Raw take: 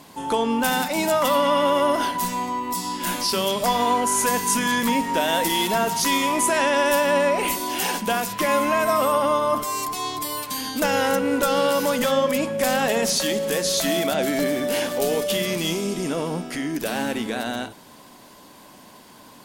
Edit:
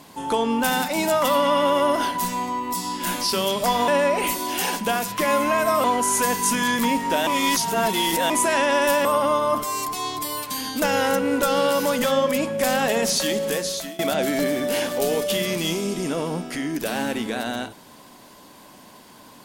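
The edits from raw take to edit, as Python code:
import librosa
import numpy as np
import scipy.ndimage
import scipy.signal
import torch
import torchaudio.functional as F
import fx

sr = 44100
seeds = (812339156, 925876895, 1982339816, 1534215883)

y = fx.edit(x, sr, fx.reverse_span(start_s=5.31, length_s=1.03),
    fx.move(start_s=7.09, length_s=1.96, to_s=3.88),
    fx.fade_out_to(start_s=13.48, length_s=0.51, floor_db=-23.0), tone=tone)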